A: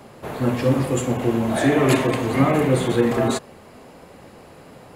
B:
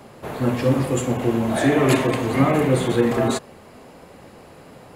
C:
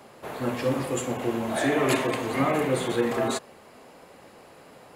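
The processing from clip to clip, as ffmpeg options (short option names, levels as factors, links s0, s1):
-af anull
-af "lowshelf=f=230:g=-11,volume=0.708"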